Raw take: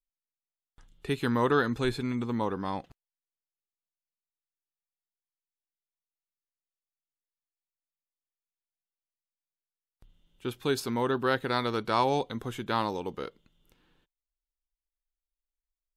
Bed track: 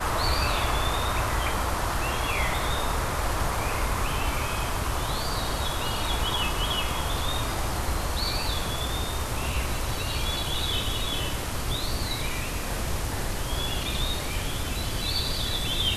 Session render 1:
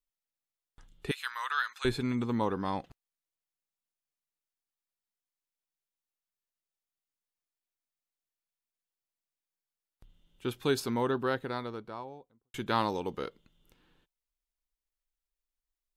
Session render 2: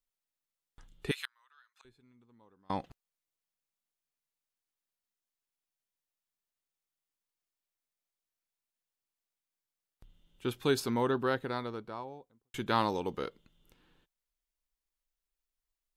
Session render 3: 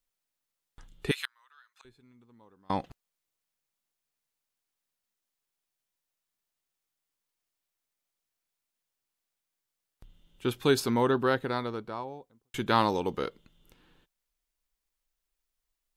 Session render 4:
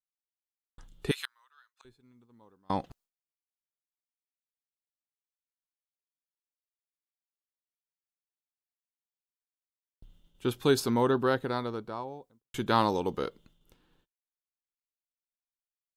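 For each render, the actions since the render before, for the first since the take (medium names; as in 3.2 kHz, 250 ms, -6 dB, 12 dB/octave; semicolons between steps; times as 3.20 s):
1.11–1.85 s: high-pass 1.2 kHz 24 dB/octave; 10.58–12.54 s: studio fade out
1.25–2.70 s: inverted gate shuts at -36 dBFS, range -33 dB
trim +4.5 dB
expander -57 dBFS; peaking EQ 2.2 kHz -4.5 dB 0.99 oct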